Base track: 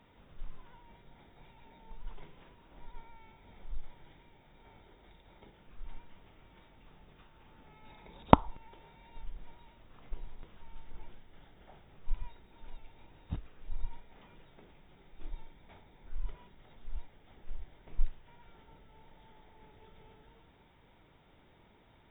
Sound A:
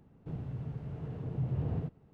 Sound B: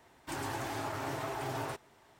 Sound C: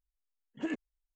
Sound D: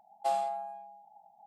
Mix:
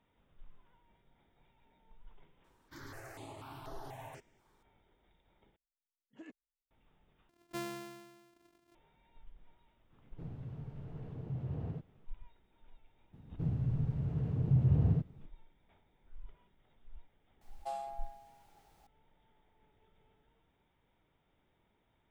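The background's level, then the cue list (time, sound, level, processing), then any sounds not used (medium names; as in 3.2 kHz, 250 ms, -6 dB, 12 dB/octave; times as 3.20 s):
base track -12.5 dB
2.44 s: add B -9 dB + stepped phaser 4.1 Hz 650–7800 Hz
5.56 s: replace with C -17.5 dB
7.29 s: replace with D -11 dB + sorted samples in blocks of 128 samples
9.92 s: add A -6 dB
13.13 s: add A -1.5 dB + tone controls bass +8 dB, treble +3 dB
17.41 s: add D -10.5 dB + added noise pink -60 dBFS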